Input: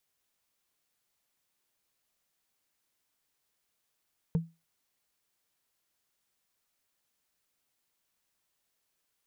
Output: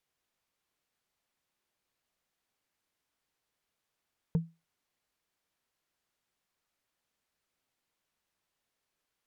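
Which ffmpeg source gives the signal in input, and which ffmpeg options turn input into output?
-f lavfi -i "aevalsrc='0.0944*pow(10,-3*t/0.25)*sin(2*PI*165*t)+0.0266*pow(10,-3*t/0.074)*sin(2*PI*454.9*t)+0.0075*pow(10,-3*t/0.033)*sin(2*PI*891.7*t)+0.00211*pow(10,-3*t/0.018)*sin(2*PI*1473.9*t)+0.000596*pow(10,-3*t/0.011)*sin(2*PI*2201.1*t)':duration=0.45:sample_rate=44100"
-af "aemphasis=mode=reproduction:type=cd"

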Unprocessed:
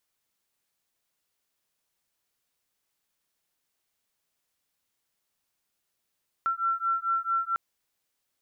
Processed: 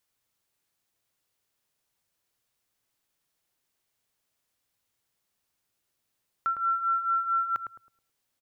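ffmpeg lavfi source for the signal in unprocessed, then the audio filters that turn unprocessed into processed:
-f lavfi -i "aevalsrc='0.0398*(sin(2*PI*1350*t)+sin(2*PI*1354.5*t))':duration=1.1:sample_rate=44100"
-filter_complex "[0:a]equalizer=frequency=110:width_type=o:width=0.36:gain=7,asplit=2[link_01][link_02];[link_02]adelay=107,lowpass=frequency=880:poles=1,volume=-4dB,asplit=2[link_03][link_04];[link_04]adelay=107,lowpass=frequency=880:poles=1,volume=0.41,asplit=2[link_05][link_06];[link_06]adelay=107,lowpass=frequency=880:poles=1,volume=0.41,asplit=2[link_07][link_08];[link_08]adelay=107,lowpass=frequency=880:poles=1,volume=0.41,asplit=2[link_09][link_10];[link_10]adelay=107,lowpass=frequency=880:poles=1,volume=0.41[link_11];[link_03][link_05][link_07][link_09][link_11]amix=inputs=5:normalize=0[link_12];[link_01][link_12]amix=inputs=2:normalize=0"

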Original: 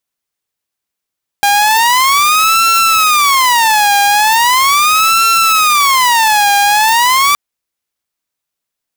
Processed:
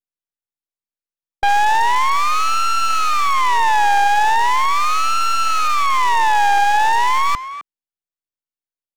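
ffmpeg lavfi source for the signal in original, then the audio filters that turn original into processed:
-f lavfi -i "aevalsrc='0.562*(2*mod((1079*t-271/(2*PI*0.39)*sin(2*PI*0.39*t)),1)-1)':duration=5.92:sample_rate=44100"
-filter_complex "[0:a]afwtdn=0.126,acrossover=split=620[link_01][link_02];[link_02]aeval=exprs='max(val(0),0)':channel_layout=same[link_03];[link_01][link_03]amix=inputs=2:normalize=0,asplit=2[link_04][link_05];[link_05]adelay=260,highpass=300,lowpass=3400,asoftclip=type=hard:threshold=-13.5dB,volume=-11dB[link_06];[link_04][link_06]amix=inputs=2:normalize=0"

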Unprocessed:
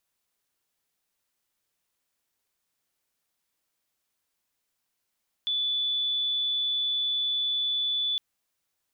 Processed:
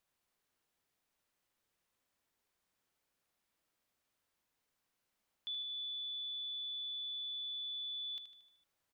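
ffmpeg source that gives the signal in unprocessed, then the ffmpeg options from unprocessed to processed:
-f lavfi -i "sine=frequency=3470:duration=2.71:sample_rate=44100,volume=-6.44dB"
-filter_complex "[0:a]highshelf=frequency=3300:gain=-8,alimiter=level_in=13dB:limit=-24dB:level=0:latency=1:release=41,volume=-13dB,asplit=2[link_01][link_02];[link_02]aecho=0:1:76|152|228|304|380|456:0.335|0.184|0.101|0.0557|0.0307|0.0169[link_03];[link_01][link_03]amix=inputs=2:normalize=0"

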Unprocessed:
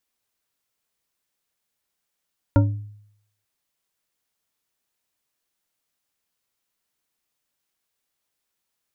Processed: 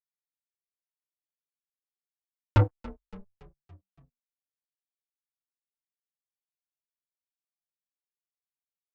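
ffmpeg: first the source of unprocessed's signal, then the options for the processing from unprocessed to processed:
-f lavfi -i "aevalsrc='0.282*pow(10,-3*t/0.72)*sin(2*PI*104*t)+0.178*pow(10,-3*t/0.354)*sin(2*PI*286.7*t)+0.112*pow(10,-3*t/0.221)*sin(2*PI*562*t)+0.0708*pow(10,-3*t/0.155)*sin(2*PI*929*t)+0.0447*pow(10,-3*t/0.117)*sin(2*PI*1387.4*t)':duration=0.89:sample_rate=44100"
-filter_complex "[0:a]acrusher=bits=2:mix=0:aa=0.5,asplit=6[link_01][link_02][link_03][link_04][link_05][link_06];[link_02]adelay=283,afreqshift=-48,volume=-17.5dB[link_07];[link_03]adelay=566,afreqshift=-96,volume=-23dB[link_08];[link_04]adelay=849,afreqshift=-144,volume=-28.5dB[link_09];[link_05]adelay=1132,afreqshift=-192,volume=-34dB[link_10];[link_06]adelay=1415,afreqshift=-240,volume=-39.6dB[link_11];[link_01][link_07][link_08][link_09][link_10][link_11]amix=inputs=6:normalize=0,asplit=2[link_12][link_13];[link_13]adelay=6.1,afreqshift=-0.38[link_14];[link_12][link_14]amix=inputs=2:normalize=1"

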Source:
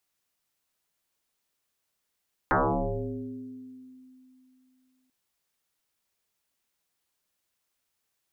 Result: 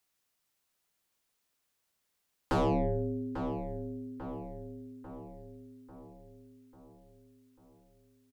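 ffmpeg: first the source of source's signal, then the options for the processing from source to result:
-f lavfi -i "aevalsrc='0.112*pow(10,-3*t/3.02)*sin(2*PI*257*t+10*pow(10,-3*t/1.94)*sin(2*PI*0.57*257*t))':duration=2.59:sample_rate=44100"
-filter_complex "[0:a]acrossover=split=550[link_01][link_02];[link_02]asoftclip=type=tanh:threshold=-33dB[link_03];[link_01][link_03]amix=inputs=2:normalize=0,asplit=2[link_04][link_05];[link_05]adelay=844,lowpass=frequency=2000:poles=1,volume=-8dB,asplit=2[link_06][link_07];[link_07]adelay=844,lowpass=frequency=2000:poles=1,volume=0.55,asplit=2[link_08][link_09];[link_09]adelay=844,lowpass=frequency=2000:poles=1,volume=0.55,asplit=2[link_10][link_11];[link_11]adelay=844,lowpass=frequency=2000:poles=1,volume=0.55,asplit=2[link_12][link_13];[link_13]adelay=844,lowpass=frequency=2000:poles=1,volume=0.55,asplit=2[link_14][link_15];[link_15]adelay=844,lowpass=frequency=2000:poles=1,volume=0.55,asplit=2[link_16][link_17];[link_17]adelay=844,lowpass=frequency=2000:poles=1,volume=0.55[link_18];[link_04][link_06][link_08][link_10][link_12][link_14][link_16][link_18]amix=inputs=8:normalize=0"

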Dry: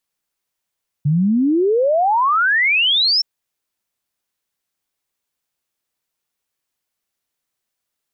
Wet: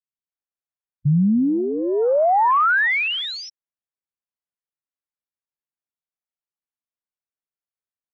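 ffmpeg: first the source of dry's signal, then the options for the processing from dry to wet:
-f lavfi -i "aevalsrc='0.237*clip(min(t,2.17-t)/0.01,0,1)*sin(2*PI*140*2.17/log(5500/140)*(exp(log(5500/140)*t/2.17)-1))':duration=2.17:sample_rate=44100"
-filter_complex "[0:a]afwtdn=0.0562,lowpass=1900,acrossover=split=360[link_01][link_02];[link_02]adelay=280[link_03];[link_01][link_03]amix=inputs=2:normalize=0"

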